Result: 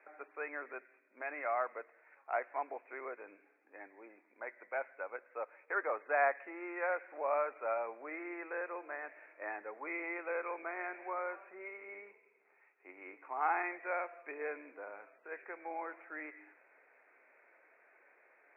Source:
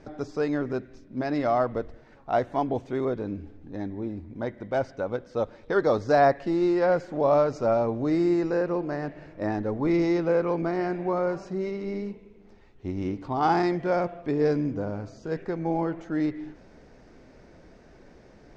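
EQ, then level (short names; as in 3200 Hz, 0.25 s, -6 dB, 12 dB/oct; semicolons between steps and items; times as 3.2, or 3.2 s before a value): Bessel high-pass 520 Hz, order 6; Chebyshev low-pass 2500 Hz, order 8; differentiator; +10.5 dB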